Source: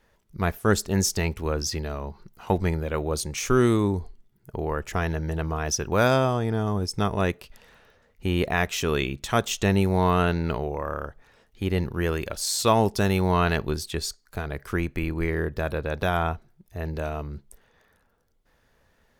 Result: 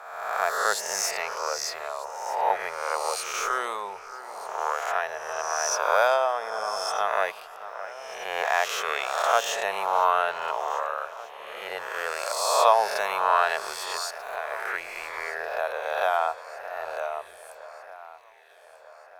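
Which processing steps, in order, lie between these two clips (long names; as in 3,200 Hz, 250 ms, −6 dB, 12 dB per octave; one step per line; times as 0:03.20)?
peak hold with a rise ahead of every peak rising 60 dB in 1.22 s
inverse Chebyshev high-pass filter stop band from 320 Hz, stop band 40 dB
tilt shelving filter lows +6.5 dB, about 1,300 Hz
on a send: delay that swaps between a low-pass and a high-pass 620 ms, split 2,400 Hz, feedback 71%, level −14 dB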